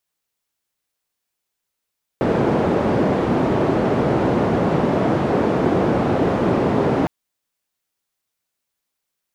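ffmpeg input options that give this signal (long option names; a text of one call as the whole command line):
ffmpeg -f lavfi -i "anoisesrc=color=white:duration=4.86:sample_rate=44100:seed=1,highpass=frequency=120,lowpass=frequency=470,volume=4.3dB" out.wav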